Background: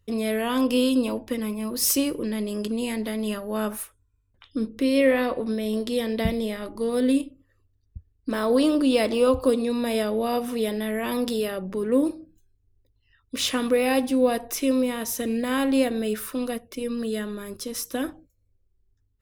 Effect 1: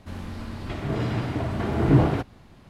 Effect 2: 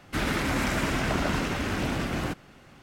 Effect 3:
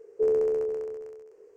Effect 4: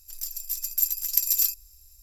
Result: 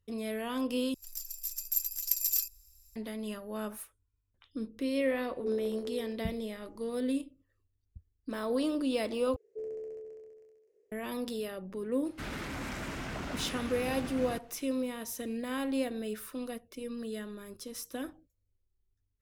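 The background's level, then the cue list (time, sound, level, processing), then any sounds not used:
background -10.5 dB
0.94 replace with 4 -7 dB
5.24 add 3 -10.5 dB
9.36 replace with 3 -16 dB + band shelf 1100 Hz -11 dB 1.1 oct
12.05 add 2 -10.5 dB + soft clip -19.5 dBFS
not used: 1

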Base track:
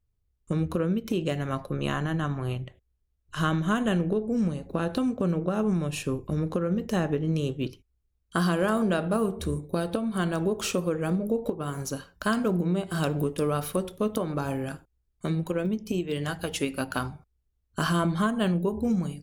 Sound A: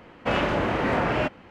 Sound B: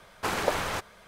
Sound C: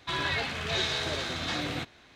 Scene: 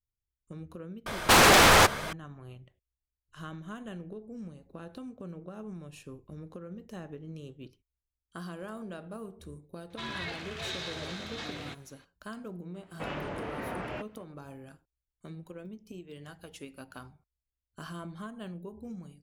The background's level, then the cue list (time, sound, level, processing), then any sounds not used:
base track -16.5 dB
1.06 add B -5.5 dB + sine folder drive 19 dB, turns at -9 dBFS
9.9 add C -8 dB
12.74 add A -13.5 dB

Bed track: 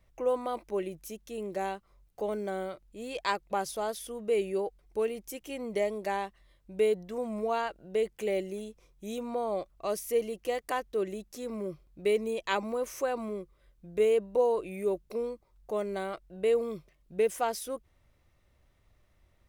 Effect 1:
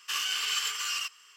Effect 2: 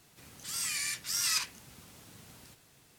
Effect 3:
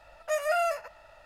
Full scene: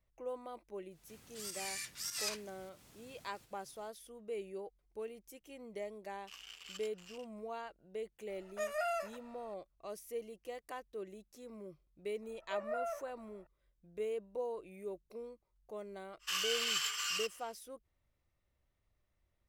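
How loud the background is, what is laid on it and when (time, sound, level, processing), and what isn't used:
bed track -13.5 dB
0.91 add 2 -8 dB + pump 101 bpm, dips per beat 1, -10 dB, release 0.187 s
6.18 add 1 -16.5 dB + Wiener smoothing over 41 samples
8.29 add 3 -9.5 dB
12.22 add 3 -11 dB + LPF 1300 Hz
16.19 add 1 -5 dB, fades 0.05 s

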